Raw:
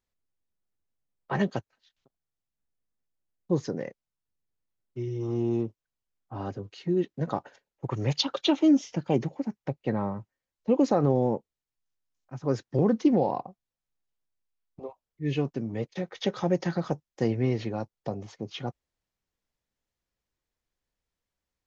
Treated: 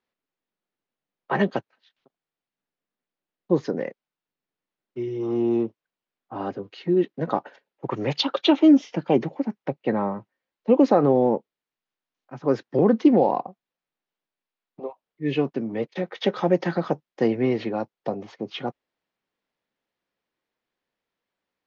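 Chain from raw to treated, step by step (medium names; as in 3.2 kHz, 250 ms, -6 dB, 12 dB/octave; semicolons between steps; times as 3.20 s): three-band isolator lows -22 dB, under 170 Hz, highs -22 dB, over 4.4 kHz; trim +6.5 dB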